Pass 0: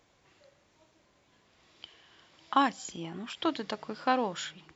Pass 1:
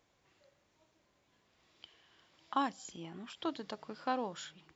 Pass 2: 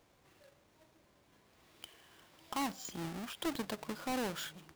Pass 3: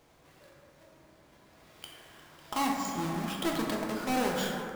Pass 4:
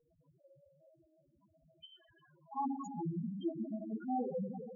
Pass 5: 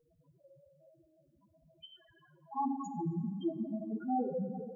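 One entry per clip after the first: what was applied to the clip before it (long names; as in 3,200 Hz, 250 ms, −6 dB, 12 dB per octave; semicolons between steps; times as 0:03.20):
dynamic equaliser 2,200 Hz, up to −5 dB, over −46 dBFS, Q 1.4; level −7 dB
each half-wave held at its own peak; brickwall limiter −30.5 dBFS, peak gain reduction 11.5 dB; level +1 dB
dense smooth reverb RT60 2.6 s, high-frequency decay 0.3×, DRR −2 dB; level +4 dB
spectral peaks only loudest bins 2; notch comb filter 300 Hz; level +1 dB
dense smooth reverb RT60 2.3 s, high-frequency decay 0.5×, DRR 16.5 dB; level +2.5 dB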